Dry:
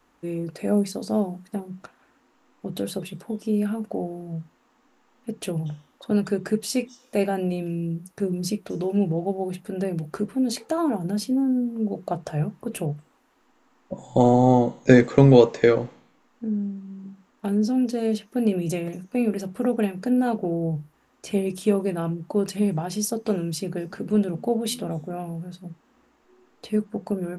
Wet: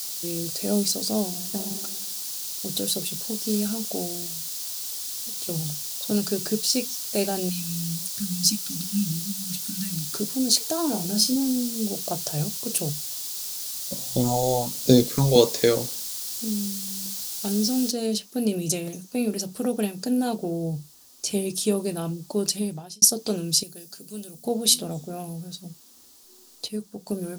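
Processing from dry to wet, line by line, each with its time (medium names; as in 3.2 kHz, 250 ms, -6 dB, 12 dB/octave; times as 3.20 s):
1.28–1.70 s: reverb throw, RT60 1.1 s, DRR 2.5 dB
3.29–3.69 s: companded quantiser 6-bit
4.26–5.49 s: compression 10:1, threshold -42 dBFS
6.15–6.74 s: low-pass 7.6 kHz -> 3.5 kHz 6 dB/octave
7.49–10.15 s: brick-wall FIR band-stop 310–1200 Hz
10.90–11.36 s: flutter echo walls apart 4.8 m, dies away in 0.24 s
12.89–15.36 s: phase shifter stages 4, 1.1 Hz, lowest notch 210–1900 Hz
17.91 s: noise floor step -44 dB -64 dB
22.47–23.02 s: fade out
23.63–24.45 s: pre-emphasis filter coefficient 0.8
26.68–27.08 s: gain -5.5 dB
whole clip: resonant high shelf 3.1 kHz +13.5 dB, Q 1.5; trim -2.5 dB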